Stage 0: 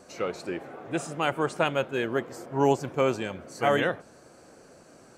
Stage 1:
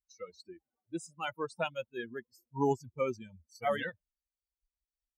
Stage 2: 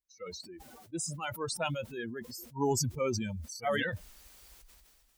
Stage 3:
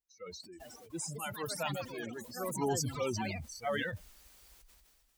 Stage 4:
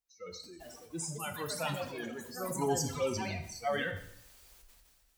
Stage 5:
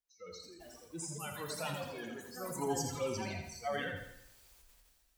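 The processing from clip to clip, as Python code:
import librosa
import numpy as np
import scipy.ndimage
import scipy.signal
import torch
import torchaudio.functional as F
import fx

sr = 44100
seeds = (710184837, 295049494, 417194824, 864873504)

y1 = fx.bin_expand(x, sr, power=3.0)
y1 = y1 * librosa.db_to_amplitude(-3.5)
y2 = fx.sustainer(y1, sr, db_per_s=29.0)
y2 = y2 * librosa.db_to_amplitude(-1.0)
y3 = fx.echo_pitch(y2, sr, ms=451, semitones=5, count=3, db_per_echo=-6.0)
y3 = y3 * librosa.db_to_amplitude(-3.5)
y4 = fx.rev_plate(y3, sr, seeds[0], rt60_s=0.72, hf_ratio=0.95, predelay_ms=0, drr_db=5.5)
y5 = fx.echo_feedback(y4, sr, ms=83, feedback_pct=41, wet_db=-7.0)
y5 = y5 * librosa.db_to_amplitude(-4.5)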